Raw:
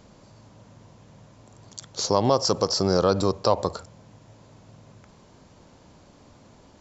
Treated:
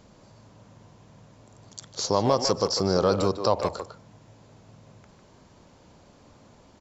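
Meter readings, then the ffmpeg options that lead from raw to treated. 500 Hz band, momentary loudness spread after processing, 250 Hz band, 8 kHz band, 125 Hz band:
−1.0 dB, 17 LU, −1.5 dB, can't be measured, −2.0 dB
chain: -filter_complex "[0:a]asplit=2[link_01][link_02];[link_02]adelay=150,highpass=300,lowpass=3400,asoftclip=type=hard:threshold=-15.5dB,volume=-6dB[link_03];[link_01][link_03]amix=inputs=2:normalize=0,volume=-2dB"

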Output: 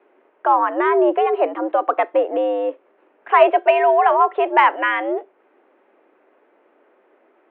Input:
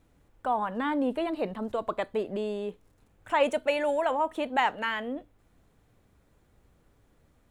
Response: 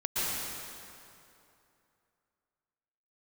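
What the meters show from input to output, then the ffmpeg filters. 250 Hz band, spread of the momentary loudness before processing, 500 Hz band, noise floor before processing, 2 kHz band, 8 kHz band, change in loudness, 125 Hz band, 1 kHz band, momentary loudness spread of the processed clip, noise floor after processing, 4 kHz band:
+6.0 dB, 8 LU, +12.0 dB, −66 dBFS, +10.5 dB, below −20 dB, +12.0 dB, can't be measured, +14.0 dB, 9 LU, −60 dBFS, +3.5 dB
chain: -af "highpass=frequency=230:width_type=q:width=0.5412,highpass=frequency=230:width_type=q:width=1.307,lowpass=frequency=2800:width_type=q:width=0.5176,lowpass=frequency=2800:width_type=q:width=0.7071,lowpass=frequency=2800:width_type=q:width=1.932,afreqshift=97,acontrast=66,aemphasis=mode=reproduction:type=75kf,volume=6.5dB"

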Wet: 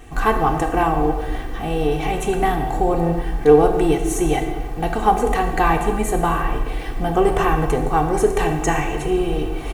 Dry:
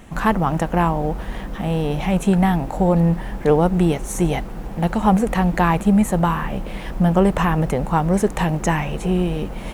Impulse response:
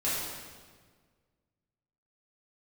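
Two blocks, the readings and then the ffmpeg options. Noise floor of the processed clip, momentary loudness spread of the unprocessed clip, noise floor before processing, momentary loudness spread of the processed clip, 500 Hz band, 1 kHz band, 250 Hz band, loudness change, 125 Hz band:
−27 dBFS, 9 LU, −31 dBFS, 8 LU, +3.5 dB, +3.0 dB, −4.0 dB, 0.0 dB, −5.5 dB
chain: -filter_complex "[0:a]aecho=1:1:2.6:0.81,asplit=2[link_01][link_02];[1:a]atrim=start_sample=2205,afade=type=out:start_time=0.38:duration=0.01,atrim=end_sample=17199[link_03];[link_02][link_03]afir=irnorm=-1:irlink=0,volume=-10.5dB[link_04];[link_01][link_04]amix=inputs=2:normalize=0,volume=-3.5dB"

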